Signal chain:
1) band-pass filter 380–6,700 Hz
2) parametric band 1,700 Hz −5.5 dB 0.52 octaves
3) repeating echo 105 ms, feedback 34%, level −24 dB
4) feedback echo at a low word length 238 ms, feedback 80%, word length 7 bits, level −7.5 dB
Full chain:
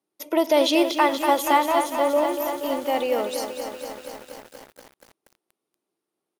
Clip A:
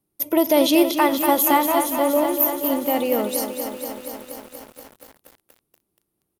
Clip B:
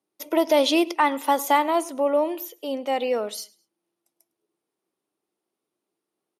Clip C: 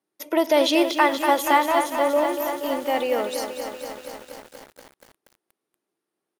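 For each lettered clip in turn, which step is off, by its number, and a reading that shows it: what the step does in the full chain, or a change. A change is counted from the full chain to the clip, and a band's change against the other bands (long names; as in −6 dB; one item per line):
1, 8 kHz band +7.0 dB
4, change in momentary loudness spread −4 LU
2, 2 kHz band +3.0 dB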